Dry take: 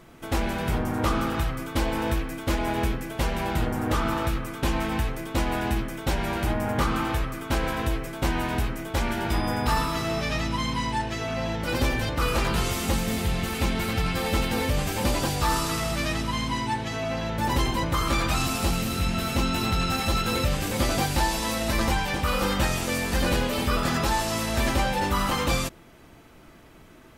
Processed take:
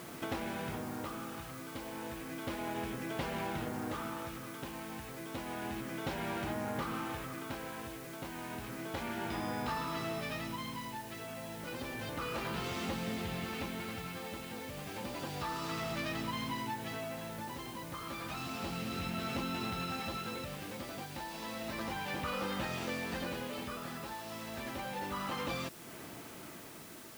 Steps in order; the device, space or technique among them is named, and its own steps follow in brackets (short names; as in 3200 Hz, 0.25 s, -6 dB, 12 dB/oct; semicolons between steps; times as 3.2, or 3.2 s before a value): medium wave at night (BPF 130–4400 Hz; compressor 4:1, threshold -41 dBFS, peak gain reduction 16.5 dB; tremolo 0.31 Hz, depth 56%; whine 10000 Hz -72 dBFS; white noise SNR 14 dB); gain +4 dB